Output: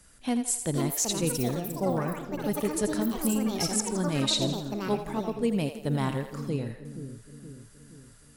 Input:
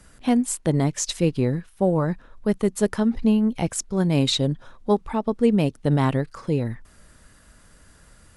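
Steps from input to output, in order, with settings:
on a send: echo with a time of its own for lows and highs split 420 Hz, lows 473 ms, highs 83 ms, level −9 dB
on the sum: delay with pitch and tempo change per echo 578 ms, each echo +6 semitones, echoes 3, each echo −6 dB
high-shelf EQ 3,600 Hz +9.5 dB
level −8.5 dB

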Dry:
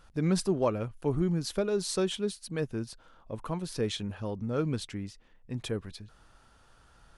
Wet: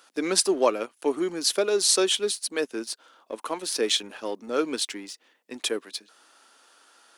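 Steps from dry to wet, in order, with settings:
Butterworth high-pass 270 Hz 36 dB per octave
high-shelf EQ 2,100 Hz +10 dB
in parallel at −4 dB: dead-zone distortion −45.5 dBFS
on the sum: level +1.5 dB

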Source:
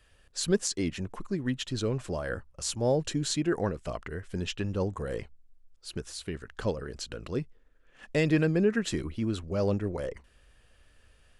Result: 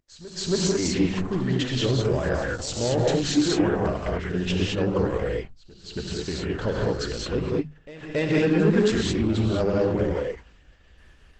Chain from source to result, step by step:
high-frequency loss of the air 65 metres
in parallel at +0.5 dB: brickwall limiter −22.5 dBFS, peak gain reduction 9.5 dB
on the sum: soft clipping −16.5 dBFS, distortion −17 dB
mains-hum notches 50/100/150/200/250 Hz
noise gate −52 dBFS, range −48 dB
on a send: backwards echo 276 ms −17 dB
on the sum: reverb whose tail is shaped and stops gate 240 ms rising, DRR −3 dB
Opus 12 kbit/s 48,000 Hz

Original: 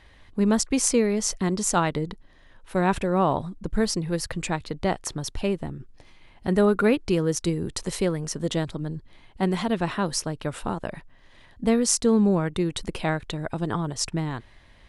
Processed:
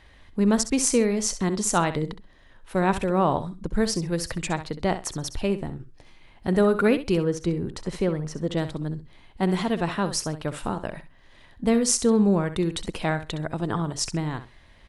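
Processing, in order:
0:07.17–0:08.57: low-pass filter 2,000 Hz 6 dB per octave
on a send: repeating echo 65 ms, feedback 16%, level −12 dB

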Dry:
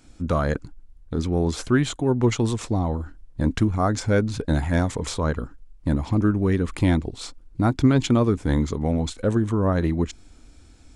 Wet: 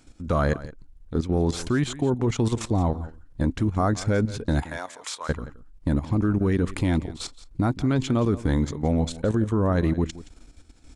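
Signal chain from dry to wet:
0:04.61–0:05.28: high-pass filter 560 Hz → 1,300 Hz 12 dB per octave
output level in coarse steps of 12 dB
single-tap delay 172 ms −17 dB
level +3 dB

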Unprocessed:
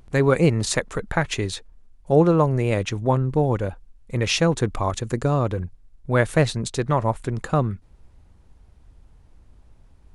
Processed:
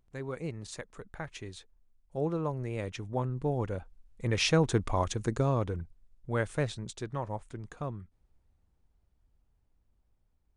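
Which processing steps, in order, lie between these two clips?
source passing by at 0:04.65, 6 m/s, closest 4.8 metres
speed change −4%
level −5 dB

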